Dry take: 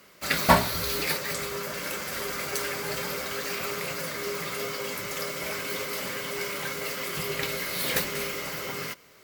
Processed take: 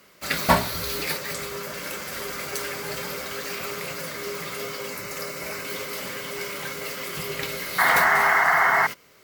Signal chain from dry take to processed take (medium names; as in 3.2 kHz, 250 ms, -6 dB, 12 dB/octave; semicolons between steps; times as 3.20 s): 4.87–5.65 s: peaking EQ 3.3 kHz -10 dB 0.2 oct; 7.78–8.87 s: painted sound noise 630–2200 Hz -19 dBFS